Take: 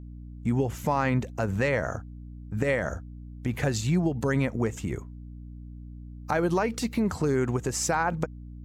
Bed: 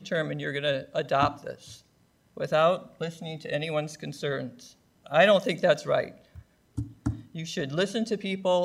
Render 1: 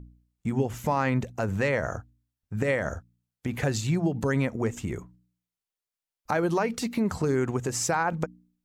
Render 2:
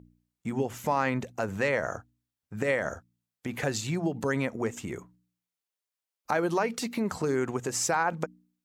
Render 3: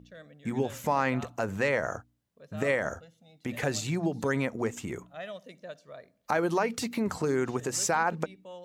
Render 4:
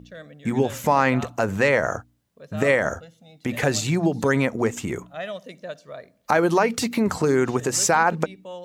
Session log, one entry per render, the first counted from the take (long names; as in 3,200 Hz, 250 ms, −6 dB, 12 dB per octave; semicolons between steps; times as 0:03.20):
hum removal 60 Hz, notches 5
high-pass filter 270 Hz 6 dB per octave
mix in bed −21 dB
level +8 dB